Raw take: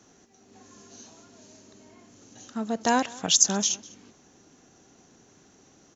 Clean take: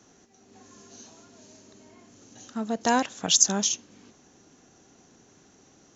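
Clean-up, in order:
echo removal 200 ms −22.5 dB

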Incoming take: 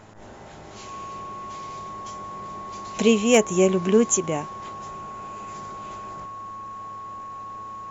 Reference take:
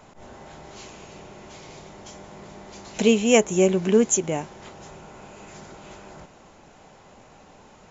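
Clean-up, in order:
clipped peaks rebuilt −6 dBFS
hum removal 106.5 Hz, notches 18
notch filter 1,100 Hz, Q 30

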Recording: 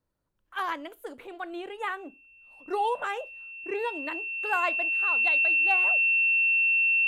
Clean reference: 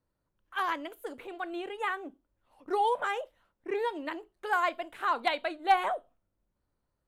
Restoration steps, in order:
notch filter 2,700 Hz, Q 30
level correction +7.5 dB, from 0:04.90

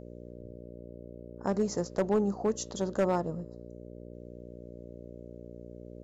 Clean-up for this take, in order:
clipped peaks rebuilt −20 dBFS
hum removal 59.5 Hz, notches 10

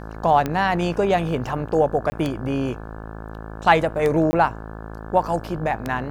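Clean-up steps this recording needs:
click removal
hum removal 54.3 Hz, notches 32
repair the gap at 0:02.10/0:04.31, 20 ms

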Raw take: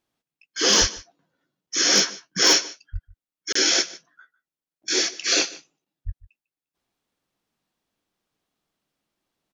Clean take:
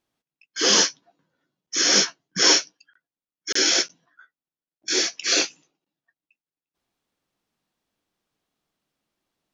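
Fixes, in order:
clipped peaks rebuilt −8.5 dBFS
high-pass at the plosives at 0:00.80/0:02.92/0:06.05
echo removal 149 ms −20 dB

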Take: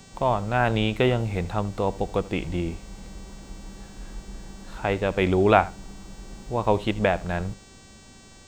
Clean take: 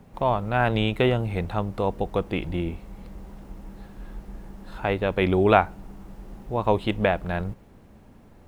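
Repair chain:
hum removal 384.8 Hz, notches 22
echo removal 78 ms −20 dB

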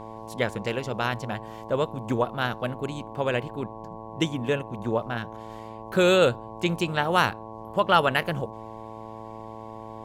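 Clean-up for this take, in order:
hum removal 110.7 Hz, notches 10

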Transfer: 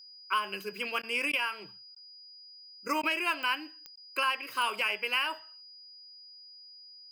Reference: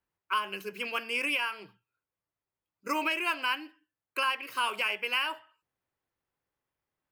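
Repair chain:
click removal
notch filter 4,900 Hz, Q 30
repair the gap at 0:01.02/0:01.32/0:01.95/0:03.02/0:03.96, 11 ms

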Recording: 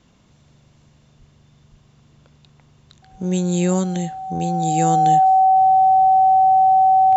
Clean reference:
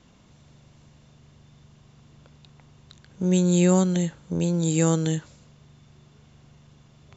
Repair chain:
notch filter 760 Hz, Q 30
high-pass at the plosives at 0:01.18/0:01.70/0:03.11/0:06.01
level correction −6 dB, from 0:05.56

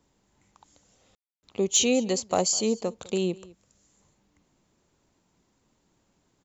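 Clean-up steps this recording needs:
clipped peaks rebuilt −11.5 dBFS
ambience match 0:01.15–0:01.43
echo removal 204 ms −22 dB

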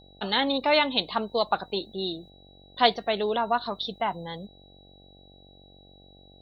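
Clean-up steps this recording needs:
hum removal 47 Hz, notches 17
notch filter 3,900 Hz, Q 30

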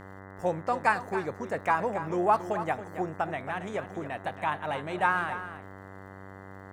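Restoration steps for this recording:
click removal
hum removal 96.4 Hz, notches 21
echo removal 275 ms −11.5 dB

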